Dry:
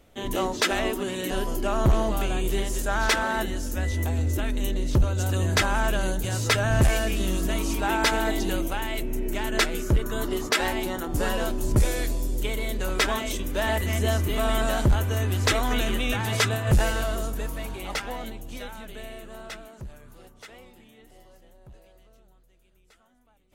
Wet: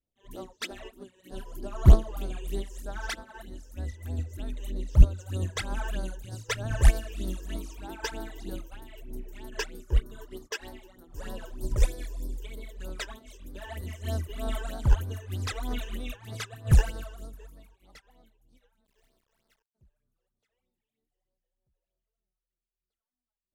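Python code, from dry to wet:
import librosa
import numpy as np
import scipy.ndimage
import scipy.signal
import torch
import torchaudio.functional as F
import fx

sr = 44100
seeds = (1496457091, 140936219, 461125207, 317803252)

y = fx.quant_dither(x, sr, seeds[0], bits=6, dither='none', at=(18.84, 19.74), fade=0.02)
y = fx.phaser_stages(y, sr, stages=12, low_hz=210.0, high_hz=2600.0, hz=3.2, feedback_pct=45)
y = fx.upward_expand(y, sr, threshold_db=-38.0, expansion=2.5)
y = y * librosa.db_to_amplitude(5.0)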